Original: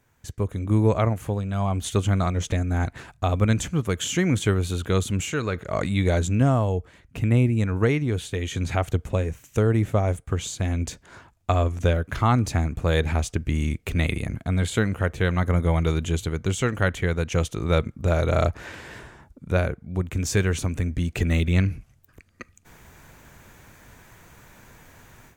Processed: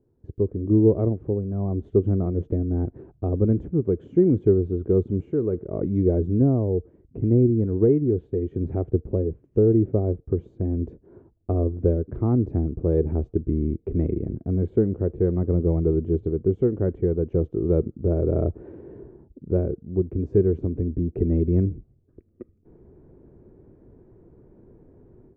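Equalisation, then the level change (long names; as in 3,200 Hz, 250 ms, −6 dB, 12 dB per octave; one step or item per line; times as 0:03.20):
low-pass with resonance 380 Hz, resonance Q 3.8
−2.0 dB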